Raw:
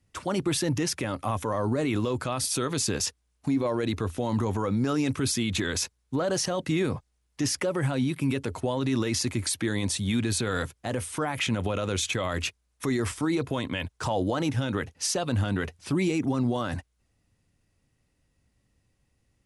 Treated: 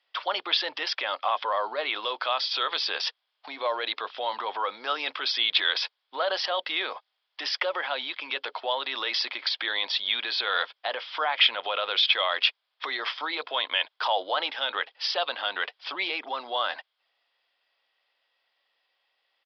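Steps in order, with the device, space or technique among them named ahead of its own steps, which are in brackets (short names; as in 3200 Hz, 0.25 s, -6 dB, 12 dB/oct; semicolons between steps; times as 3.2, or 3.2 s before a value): musical greeting card (downsampling 11025 Hz; HPF 650 Hz 24 dB/oct; bell 3300 Hz +10 dB 0.24 oct); gain +5.5 dB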